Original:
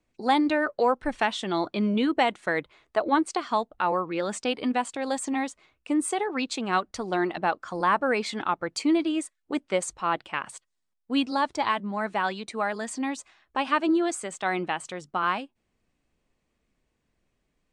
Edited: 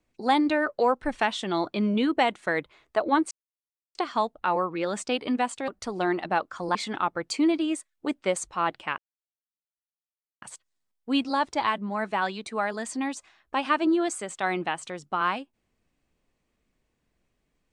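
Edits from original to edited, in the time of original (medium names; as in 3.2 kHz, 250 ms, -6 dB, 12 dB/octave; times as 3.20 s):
3.31 s: insert silence 0.64 s
5.04–6.80 s: delete
7.87–8.21 s: delete
10.44 s: insert silence 1.44 s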